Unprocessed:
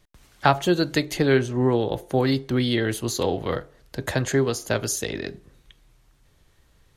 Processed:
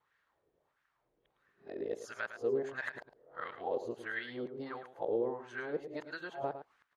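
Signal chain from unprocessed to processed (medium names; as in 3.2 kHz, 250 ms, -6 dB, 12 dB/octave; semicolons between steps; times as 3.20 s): reverse the whole clip; compression 4:1, threshold -21 dBFS, peak gain reduction 8.5 dB; wah-wah 1.5 Hz 430–1700 Hz, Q 2.9; on a send: delay 108 ms -10.5 dB; on the sum: trim -3 dB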